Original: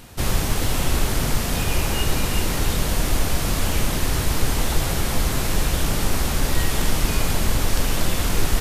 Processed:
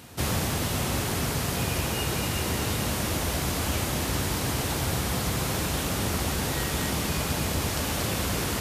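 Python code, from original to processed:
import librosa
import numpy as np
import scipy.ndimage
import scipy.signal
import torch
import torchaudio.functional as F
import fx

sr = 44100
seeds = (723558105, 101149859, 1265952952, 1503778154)

p1 = scipy.signal.sosfilt(scipy.signal.butter(4, 67.0, 'highpass', fs=sr, output='sos'), x)
p2 = p1 + fx.echo_alternate(p1, sr, ms=115, hz=1300.0, feedback_pct=82, wet_db=-4.5, dry=0)
p3 = fx.rider(p2, sr, range_db=10, speed_s=0.5)
y = p3 * librosa.db_to_amplitude(-5.0)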